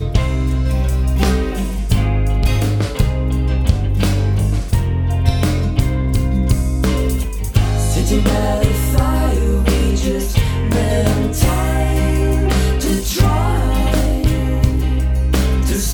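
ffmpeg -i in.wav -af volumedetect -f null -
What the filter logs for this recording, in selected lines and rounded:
mean_volume: -14.7 dB
max_volume: -1.8 dB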